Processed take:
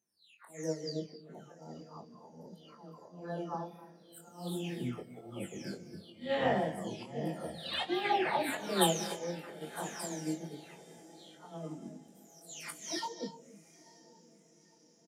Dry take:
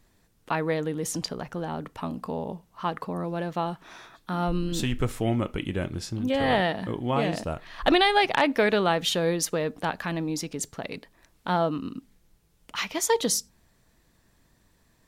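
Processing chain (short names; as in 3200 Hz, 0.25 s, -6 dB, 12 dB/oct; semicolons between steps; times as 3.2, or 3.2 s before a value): spectral delay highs early, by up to 0.61 s; bell 340 Hz +4.5 dB 2.4 oct; auto swell 0.247 s; on a send: diffused feedback echo 0.974 s, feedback 61%, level -14.5 dB; on the sum: chorus 1.5 Hz, delay 19 ms, depth 6.6 ms; HPF 100 Hz 24 dB/oct; high shelf 4500 Hz +7 dB; doubler 35 ms -12 dB; non-linear reverb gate 0.31 s rising, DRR 9 dB; spectral noise reduction 10 dB; upward expander 1.5:1, over -38 dBFS; gain -4 dB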